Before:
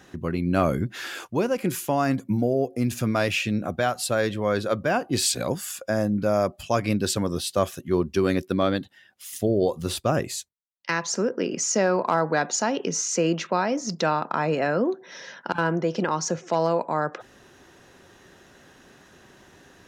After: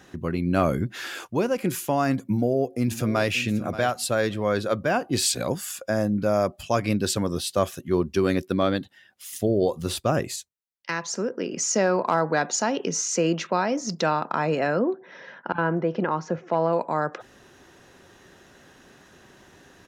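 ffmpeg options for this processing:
-filter_complex "[0:a]asplit=2[s0][s1];[s1]afade=t=in:st=2.27:d=0.01,afade=t=out:st=3.32:d=0.01,aecho=0:1:580|1160:0.211349|0.0211349[s2];[s0][s2]amix=inputs=2:normalize=0,asettb=1/sr,asplit=3[s3][s4][s5];[s3]atrim=end=14.794[s6];[s4]atrim=start=14.79:end=16.73,asetpts=PTS-STARTPTS,afade=t=in:d=0.004:c=qsin,afade=t=out:st=1.936:d=0.004:c=qsin,lowpass=2200[s7];[s5]atrim=start=16.726[s8];[s6][s7]acrossfade=d=0.004:c1=hsin:c2=qsin[s9];[s9][s8]acrossfade=d=0.004:c1=qsin:c2=hsin,asplit=3[s10][s11][s12];[s10]atrim=end=10.362[s13];[s11]atrim=start=10.358:end=11.562,asetpts=PTS-STARTPTS,volume=0.708[s14];[s12]atrim=start=11.558[s15];[s13][s14]acrossfade=d=0.004:c1=hsin:c2=hsin[s16];[s16][s15]acrossfade=d=0.004:c1=hsin:c2=hsin"

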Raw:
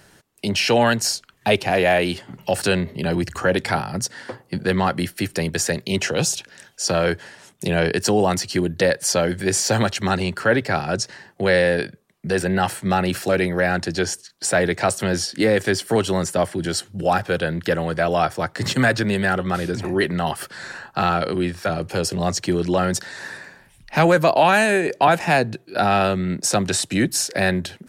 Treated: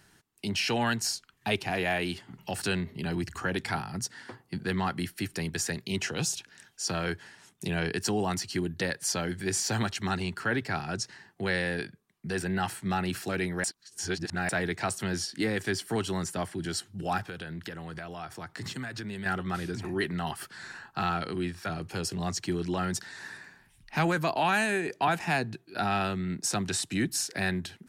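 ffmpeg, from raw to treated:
-filter_complex "[0:a]asettb=1/sr,asplit=3[s0][s1][s2];[s0]atrim=end=17.274[s3];[s1]atrim=start=17.27:end=19.26,asetpts=PTS-STARTPTS,afade=t=in:d=0.004:c=qsin,afade=t=out:st=1.986:d=0.004:c=qsin,acompressor=threshold=0.0562:ratio=5:attack=3.2:release=140:knee=1:detection=peak[s4];[s2]atrim=start=19.256[s5];[s3][s4]acrossfade=d=0.004:c1=hsin:c2=qsin[s6];[s6][s5]acrossfade=d=0.004:c1=qsin:c2=hsin,asplit=3[s7][s8][s9];[s7]atrim=end=13.642[s10];[s8]atrim=start=13.638:end=14.492,asetpts=PTS-STARTPTS,areverse[s11];[s9]atrim=start=14.488[s12];[s10][s11]acrossfade=d=0.004:c1=hsin:c2=hsin[s13];[s13][s12]acrossfade=d=0.004:c1=hsin:c2=hsin,equalizer=f=550:t=o:w=0.49:g=-11,volume=0.376"

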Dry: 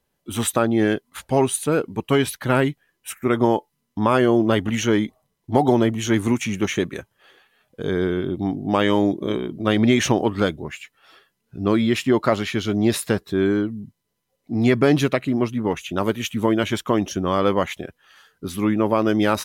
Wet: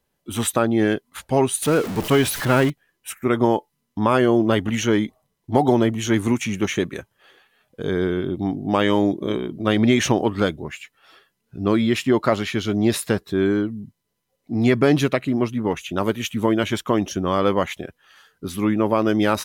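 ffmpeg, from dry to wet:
-filter_complex "[0:a]asettb=1/sr,asplit=3[s0][s1][s2];[s0]atrim=end=1.624[s3];[s1]atrim=start=1.62:end=2.7,asetpts=PTS-STARTPTS,afade=t=in:d=0.004:c=qsin,afade=t=out:st=1.076:d=0.004:c=qsin,aeval=exprs='val(0)+0.5*0.0596*sgn(val(0))':c=same[s4];[s2]atrim=start=2.696[s5];[s3][s4]acrossfade=d=0.004:c1=hsin:c2=qsin[s6];[s6][s5]acrossfade=d=0.004:c1=qsin:c2=hsin"

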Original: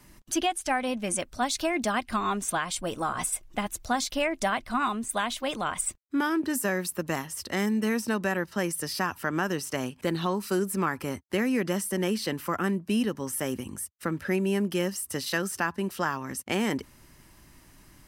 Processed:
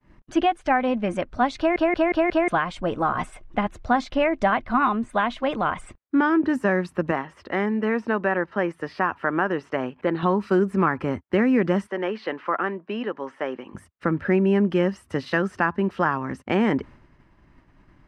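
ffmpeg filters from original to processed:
-filter_complex "[0:a]asettb=1/sr,asplit=3[s0][s1][s2];[s0]atrim=end=7.114[s3];[s1]atrim=start=7.11:end=10.23,asetpts=PTS-STARTPTS,afade=t=in:d=0.004:c=qsin,afade=t=out:st=3.116:d=0.004:c=qsin,bass=f=250:g=-9,treble=f=4000:g=-9[s4];[s2]atrim=start=10.226[s5];[s3][s4]acrossfade=d=0.004:c1=hsin:c2=qsin[s6];[s6][s5]acrossfade=d=0.004:c1=qsin:c2=hsin,asplit=3[s7][s8][s9];[s7]afade=t=out:st=11.86:d=0.02[s10];[s8]highpass=460,lowpass=3800,afade=t=in:st=11.86:d=0.02,afade=t=out:st=13.73:d=0.02[s11];[s9]afade=t=in:st=13.73:d=0.02[s12];[s10][s11][s12]amix=inputs=3:normalize=0,asplit=6[s13][s14][s15][s16][s17][s18];[s13]atrim=end=1.762[s19];[s14]atrim=start=1.578:end=1.762[s20];[s15]atrim=start=1.578:end=1.762[s21];[s16]atrim=start=1.578:end=1.762[s22];[s17]atrim=start=1.578:end=1.762[s23];[s18]atrim=start=2.478[s24];[s19][s20]acrossfade=d=0.004:c1=hsin:c2=hsin[s25];[s25][s21]acrossfade=d=0.004:c1=hsin:c2=hsin[s26];[s26][s22]acrossfade=d=0.004:c1=hsin:c2=hsin[s27];[s27][s23]acrossfade=d=0.004:c1=hsin:c2=hsin[s28];[s28][s24]acrossfade=d=0.004:c1=hsin:c2=hsin,agate=range=0.0224:threshold=0.00447:ratio=3:detection=peak,lowpass=1900,volume=2.24"

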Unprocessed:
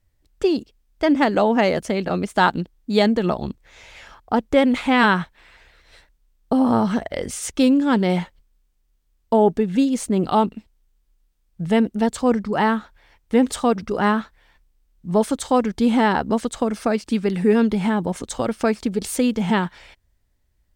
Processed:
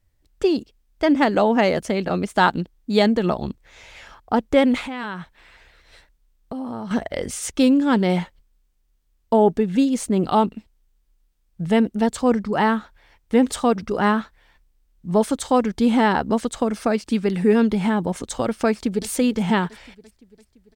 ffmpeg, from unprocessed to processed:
-filter_complex "[0:a]asettb=1/sr,asplit=3[s0][s1][s2];[s0]atrim=end=4.854[s3];[s1]atrim=start=4.85:end=6.91,asetpts=PTS-STARTPTS,afade=t=in:d=0.004:c=qsin,afade=t=out:st=2.056:d=0.004:c=qsin,acompressor=threshold=0.0224:ratio=2.5:attack=3.2:release=140:knee=1:detection=peak[s4];[s2]atrim=start=6.906[s5];[s3][s4]acrossfade=d=0.004:c1=hsin:c2=qsin[s6];[s6][s5]acrossfade=d=0.004:c1=qsin:c2=hsin,asplit=2[s7][s8];[s8]afade=t=in:st=18.68:d=0.01,afade=t=out:st=19.08:d=0.01,aecho=0:1:340|680|1020|1360|1700|2040|2380:0.141254|0.0918149|0.0596797|0.0387918|0.0252147|0.0163895|0.0106532[s9];[s7][s9]amix=inputs=2:normalize=0"

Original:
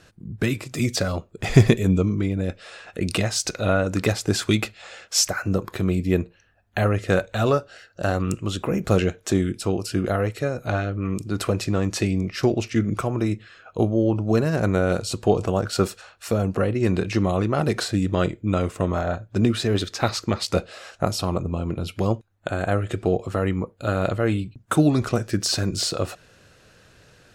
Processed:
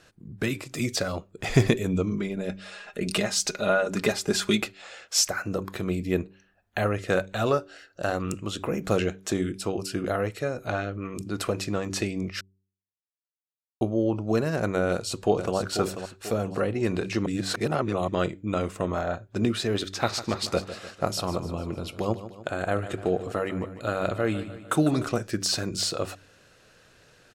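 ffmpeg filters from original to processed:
-filter_complex "[0:a]asettb=1/sr,asplit=3[s0][s1][s2];[s0]atrim=end=2.114[s3];[s1]atrim=start=2.11:end=4.62,asetpts=PTS-STARTPTS,afade=t=in:d=0.004:c=qsin,afade=t=out:st=2.506:d=0.004:c=qsin,aecho=1:1:4.9:0.65,atrim=end_sample=110691[s4];[s2]atrim=start=4.616[s5];[s3][s4]acrossfade=d=0.004:c1=hsin:c2=qsin[s6];[s6][s5]acrossfade=d=0.004:c1=qsin:c2=hsin,asplit=2[s7][s8];[s8]afade=t=in:st=14.89:d=0.01,afade=t=out:st=15.56:d=0.01,aecho=0:1:490|980|1470|1960:0.375837|0.150335|0.060134|0.0240536[s9];[s7][s9]amix=inputs=2:normalize=0,asettb=1/sr,asplit=3[s10][s11][s12];[s10]atrim=end=19.784[s13];[s11]atrim=start=19.78:end=25.06,asetpts=PTS-STARTPTS,afade=t=in:d=0.004:c=qsin,afade=t=out:st=5.276:d=0.004:c=qsin,aecho=1:1:150|300|450|600|750:0.211|0.114|0.0616|0.0333|0.018,atrim=end_sample=232848[s14];[s12]atrim=start=25.056[s15];[s13][s14]acrossfade=d=0.004:c1=hsin:c2=qsin[s16];[s16][s15]acrossfade=d=0.004:c1=qsin:c2=hsin,asplit=5[s17][s18][s19][s20][s21];[s17]atrim=end=12.41,asetpts=PTS-STARTPTS,afade=t=out:st=12.406:d=0.004:c=hsin[s22];[s18]atrim=start=12.41:end=13.81,asetpts=PTS-STARTPTS,volume=0[s23];[s19]atrim=start=13.81:end=17.262,asetpts=PTS-STARTPTS,afade=t=in:d=0.004:c=hsin[s24];[s20]atrim=start=17.258:end=18.082,asetpts=PTS-STARTPTS,areverse[s25];[s21]atrim=start=18.078[s26];[s22][s23][s24]concat=n=3:v=0:a=1[s27];[s27][s25]acrossfade=d=0.004:c1=hsin:c2=hsin[s28];[s28][s26]acrossfade=d=0.004:c1=hsin:c2=hsin,equalizer=f=64:w=0.38:g=-6,bandreject=f=95.94:t=h:w=4,bandreject=f=191.88:t=h:w=4,bandreject=f=287.82:t=h:w=4,bandreject=f=383.76:t=h:w=4,volume=0.75"

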